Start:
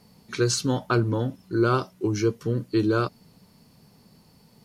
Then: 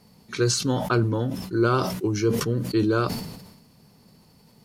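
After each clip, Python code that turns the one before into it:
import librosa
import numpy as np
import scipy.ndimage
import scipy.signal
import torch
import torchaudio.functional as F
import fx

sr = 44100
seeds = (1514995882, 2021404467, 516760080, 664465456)

y = fx.sustainer(x, sr, db_per_s=54.0)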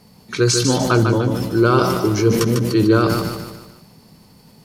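y = fx.echo_feedback(x, sr, ms=149, feedback_pct=44, wet_db=-5.5)
y = y * librosa.db_to_amplitude(6.0)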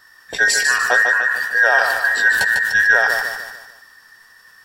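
y = fx.band_invert(x, sr, width_hz=2000)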